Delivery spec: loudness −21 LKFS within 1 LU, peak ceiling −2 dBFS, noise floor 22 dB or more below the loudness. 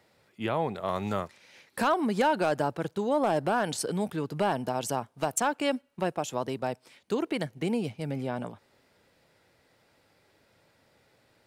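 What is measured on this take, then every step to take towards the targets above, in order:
share of clipped samples 0.2%; peaks flattened at −17.0 dBFS; integrated loudness −30.0 LKFS; sample peak −17.0 dBFS; target loudness −21.0 LKFS
→ clipped peaks rebuilt −17 dBFS
level +9 dB

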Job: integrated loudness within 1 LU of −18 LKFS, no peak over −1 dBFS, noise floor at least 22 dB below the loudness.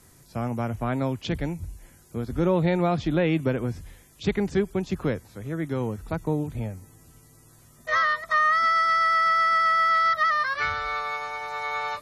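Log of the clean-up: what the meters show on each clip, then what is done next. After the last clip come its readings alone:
integrated loudness −24.5 LKFS; sample peak −11.0 dBFS; target loudness −18.0 LKFS
→ level +6.5 dB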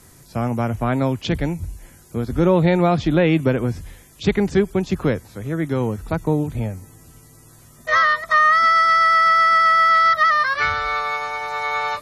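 integrated loudness −18.0 LKFS; sample peak −4.5 dBFS; background noise floor −48 dBFS

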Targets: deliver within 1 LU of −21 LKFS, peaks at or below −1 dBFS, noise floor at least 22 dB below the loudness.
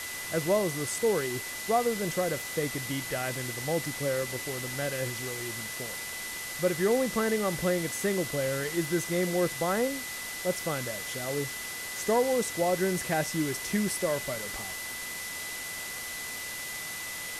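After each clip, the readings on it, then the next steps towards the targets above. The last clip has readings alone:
interfering tone 2,000 Hz; level of the tone −39 dBFS; background noise floor −38 dBFS; target noise floor −52 dBFS; integrated loudness −30.0 LKFS; sample peak −14.0 dBFS; target loudness −21.0 LKFS
→ notch filter 2,000 Hz, Q 30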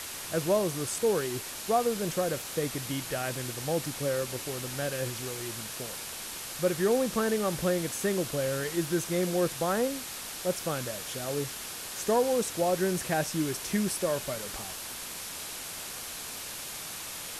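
interfering tone none found; background noise floor −40 dBFS; target noise floor −53 dBFS
→ noise reduction from a noise print 13 dB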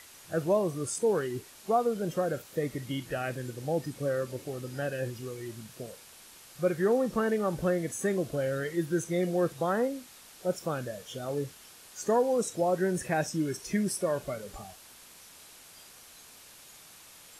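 background noise floor −53 dBFS; integrated loudness −31.0 LKFS; sample peak −15.0 dBFS; target loudness −21.0 LKFS
→ level +10 dB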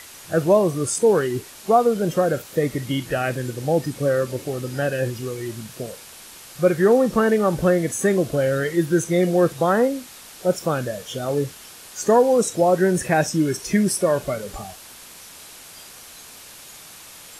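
integrated loudness −21.0 LKFS; sample peak −5.0 dBFS; background noise floor −43 dBFS

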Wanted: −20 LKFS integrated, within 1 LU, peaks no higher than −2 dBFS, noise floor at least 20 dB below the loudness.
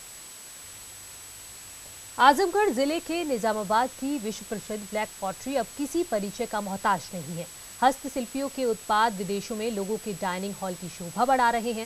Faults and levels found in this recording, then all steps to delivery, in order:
interfering tone 7,900 Hz; level of the tone −45 dBFS; background noise floor −44 dBFS; target noise floor −47 dBFS; integrated loudness −27.0 LKFS; sample peak −5.0 dBFS; target loudness −20.0 LKFS
→ notch filter 7,900 Hz, Q 30
broadband denoise 6 dB, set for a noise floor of −44 dBFS
level +7 dB
brickwall limiter −2 dBFS

